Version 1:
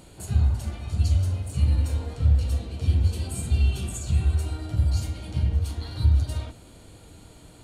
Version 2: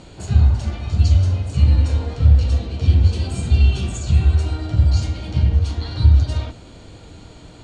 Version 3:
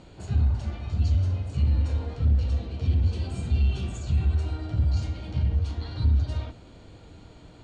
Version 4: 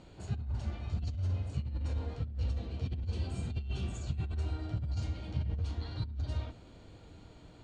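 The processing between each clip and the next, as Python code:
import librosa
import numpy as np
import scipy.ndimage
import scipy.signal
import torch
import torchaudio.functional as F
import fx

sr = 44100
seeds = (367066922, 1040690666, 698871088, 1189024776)

y1 = scipy.signal.sosfilt(scipy.signal.butter(4, 6600.0, 'lowpass', fs=sr, output='sos'), x)
y1 = F.gain(torch.from_numpy(y1), 7.5).numpy()
y2 = fx.high_shelf(y1, sr, hz=5100.0, db=-8.5)
y2 = 10.0 ** (-7.5 / 20.0) * np.tanh(y2 / 10.0 ** (-7.5 / 20.0))
y2 = F.gain(torch.from_numpy(y2), -7.0).numpy()
y3 = fx.over_compress(y2, sr, threshold_db=-24.0, ratio=-0.5)
y3 = F.gain(torch.from_numpy(y3), -8.0).numpy()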